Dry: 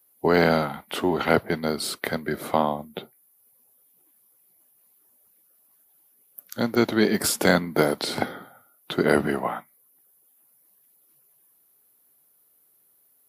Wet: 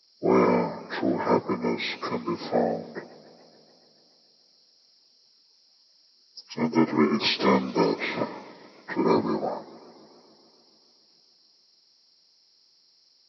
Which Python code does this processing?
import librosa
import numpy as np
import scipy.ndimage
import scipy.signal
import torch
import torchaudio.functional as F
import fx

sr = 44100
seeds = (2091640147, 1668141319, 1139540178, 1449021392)

y = fx.partial_stretch(x, sr, pct=76)
y = fx.echo_warbled(y, sr, ms=143, feedback_pct=73, rate_hz=2.8, cents=196, wet_db=-21)